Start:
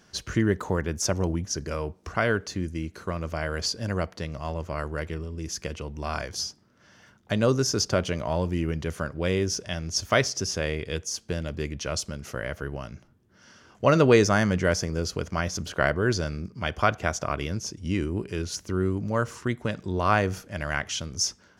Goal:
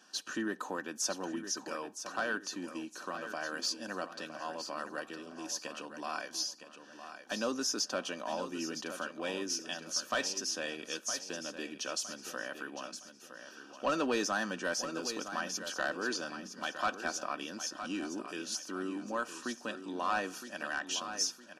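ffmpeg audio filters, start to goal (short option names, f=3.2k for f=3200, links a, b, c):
-filter_complex "[0:a]highpass=f=280:w=0.5412,highpass=f=280:w=1.3066,equalizer=f=460:w=2.3:g=-9.5,aecho=1:1:3.9:0.33,asplit=2[a][b];[b]acompressor=threshold=-39dB:ratio=6,volume=-2dB[c];[a][c]amix=inputs=2:normalize=0,asoftclip=type=tanh:threshold=-16.5dB,asuperstop=centerf=2100:order=8:qfactor=5.3,asplit=2[d][e];[e]aecho=0:1:963|1926|2889|3852:0.316|0.108|0.0366|0.0124[f];[d][f]amix=inputs=2:normalize=0,volume=-6dB" -ar 32000 -c:a libmp3lame -b:a 56k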